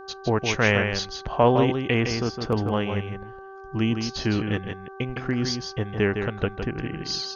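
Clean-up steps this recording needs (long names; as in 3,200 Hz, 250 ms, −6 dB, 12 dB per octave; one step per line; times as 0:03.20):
hum removal 387.1 Hz, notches 4
echo removal 160 ms −6.5 dB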